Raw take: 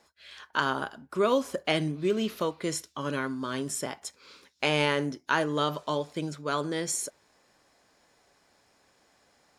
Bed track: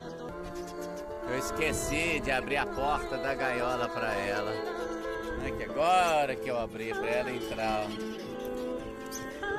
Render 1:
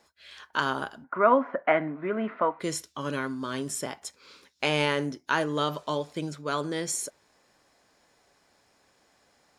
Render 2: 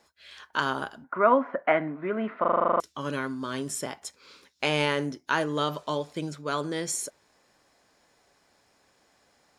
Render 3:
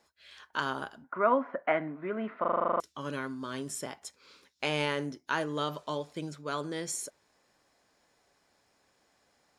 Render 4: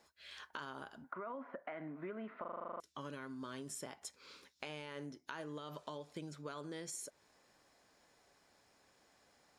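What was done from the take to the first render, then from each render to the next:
0:01.04–0:02.60: loudspeaker in its box 250–2,000 Hz, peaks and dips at 250 Hz +7 dB, 380 Hz −6 dB, 680 Hz +9 dB, 970 Hz +8 dB, 1,400 Hz +9 dB, 2,000 Hz +9 dB
0:02.40: stutter in place 0.04 s, 10 plays
level −5 dB
brickwall limiter −24.5 dBFS, peak gain reduction 11 dB; downward compressor 6 to 1, threshold −43 dBFS, peak gain reduction 13.5 dB

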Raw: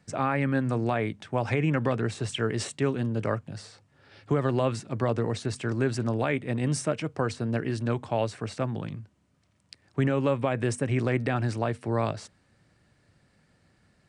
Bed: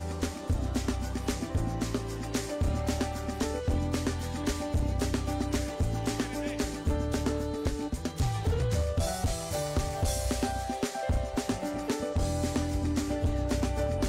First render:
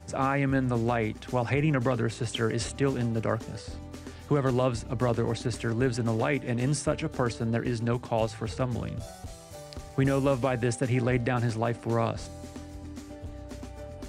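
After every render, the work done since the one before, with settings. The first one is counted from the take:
mix in bed −12 dB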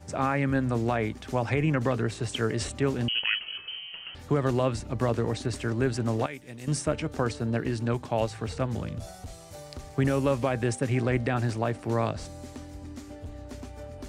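0:03.08–0:04.15: voice inversion scrambler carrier 3,100 Hz
0:06.26–0:06.68: first-order pre-emphasis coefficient 0.8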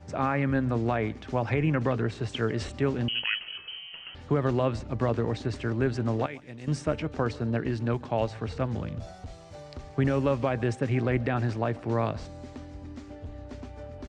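high-frequency loss of the air 120 metres
single-tap delay 138 ms −23.5 dB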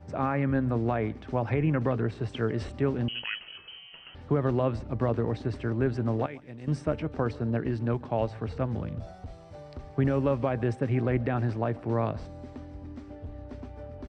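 high-shelf EQ 2,100 Hz −9 dB
notch filter 6,800 Hz, Q 8.4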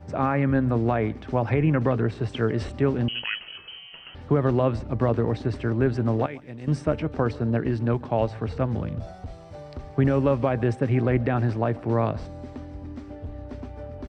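level +4.5 dB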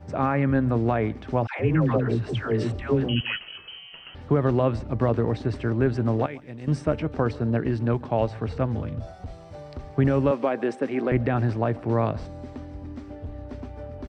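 0:01.47–0:03.38: all-pass dispersion lows, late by 128 ms, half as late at 590 Hz
0:08.72–0:09.20: notch comb filter 180 Hz
0:10.31–0:11.12: high-pass filter 230 Hz 24 dB per octave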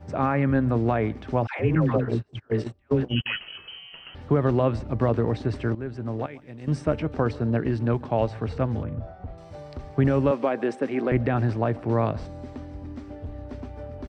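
0:01.75–0:03.26: noise gate −25 dBFS, range −32 dB
0:05.75–0:06.89: fade in linear, from −13.5 dB
0:08.83–0:09.38: low-pass filter 1,800 Hz

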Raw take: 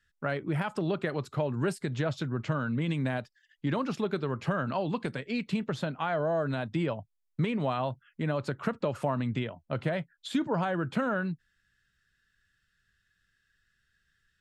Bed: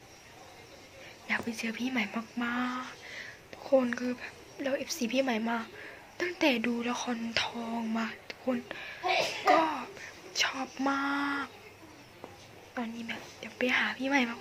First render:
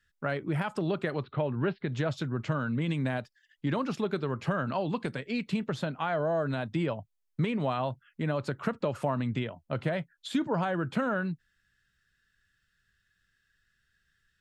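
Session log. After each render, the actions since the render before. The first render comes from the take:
0:01.23–0:01.89: Butterworth low-pass 3,800 Hz 48 dB per octave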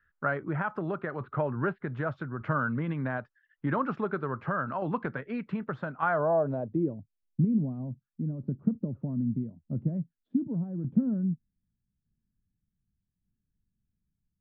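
low-pass filter sweep 1,400 Hz → 230 Hz, 0:06.10–0:07.07
shaped tremolo saw down 0.83 Hz, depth 45%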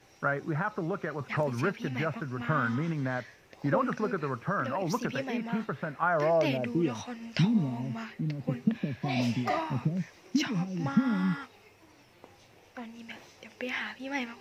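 mix in bed −6.5 dB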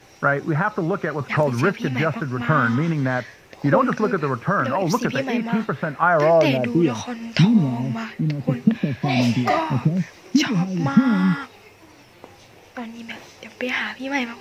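level +10 dB

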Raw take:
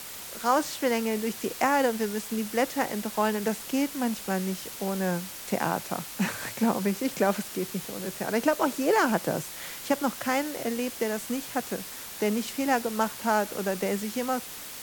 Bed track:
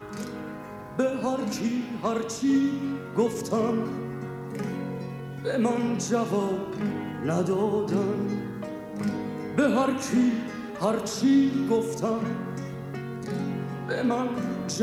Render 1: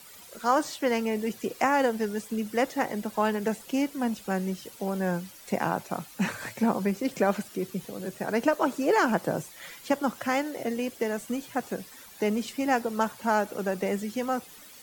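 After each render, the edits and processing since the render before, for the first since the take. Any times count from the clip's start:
broadband denoise 12 dB, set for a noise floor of −41 dBFS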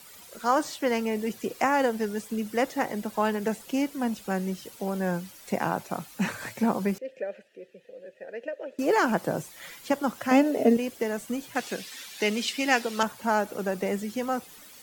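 0:06.98–0:08.79: formant filter e
0:10.31–0:10.77: hollow resonant body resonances 260/430/610/2,600 Hz, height 14 dB
0:11.55–0:13.03: meter weighting curve D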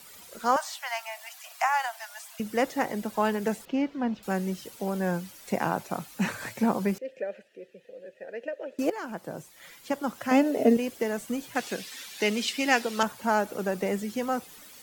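0:00.56–0:02.40: Butterworth high-pass 640 Hz 96 dB per octave
0:03.65–0:04.23: high-frequency loss of the air 220 metres
0:08.90–0:10.69: fade in, from −16 dB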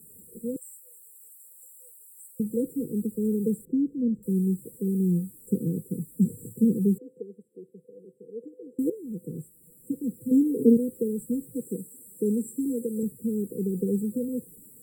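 parametric band 160 Hz +8 dB 1.1 octaves
brick-wall band-stop 510–7,400 Hz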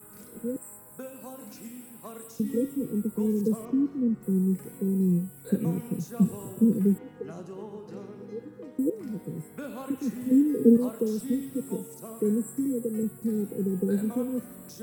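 mix in bed track −16 dB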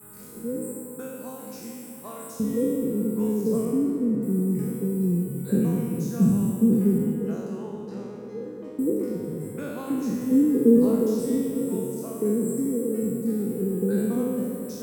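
peak hold with a decay on every bin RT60 1.46 s
tape delay 218 ms, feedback 81%, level −10 dB, low-pass 1,500 Hz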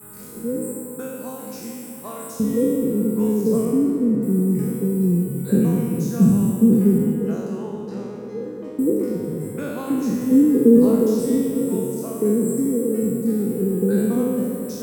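level +5 dB
brickwall limiter −3 dBFS, peak gain reduction 2 dB

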